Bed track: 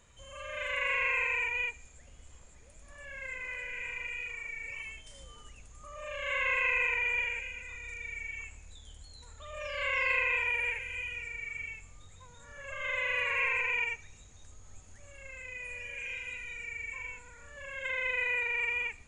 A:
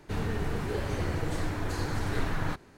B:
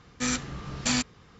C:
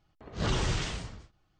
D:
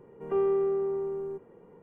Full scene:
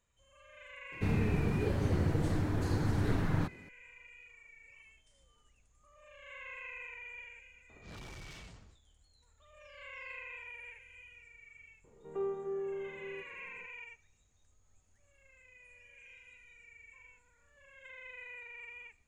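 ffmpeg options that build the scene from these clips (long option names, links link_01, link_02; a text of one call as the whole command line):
ffmpeg -i bed.wav -i cue0.wav -i cue1.wav -i cue2.wav -i cue3.wav -filter_complex "[0:a]volume=-17dB[link_01];[1:a]equalizer=frequency=160:width=0.42:gain=10[link_02];[3:a]asoftclip=type=tanh:threshold=-34.5dB[link_03];[4:a]flanger=delay=1.2:depth=1.1:regen=-71:speed=1.8:shape=sinusoidal[link_04];[link_02]atrim=end=2.77,asetpts=PTS-STARTPTS,volume=-6.5dB,afade=type=in:duration=0.004:curve=hsin,afade=type=out:start_time=2.766:duration=0.004:curve=hsin,adelay=920[link_05];[link_03]atrim=end=1.59,asetpts=PTS-STARTPTS,volume=-12dB,afade=type=in:duration=0.004:curve=hsin,afade=type=out:start_time=1.586:duration=0.004:curve=hsin,adelay=7490[link_06];[link_04]atrim=end=1.82,asetpts=PTS-STARTPTS,volume=-5dB,afade=type=in:duration=0.004:curve=hsin,afade=type=out:start_time=1.816:duration=0.004:curve=hsin,adelay=11840[link_07];[link_01][link_05][link_06][link_07]amix=inputs=4:normalize=0" out.wav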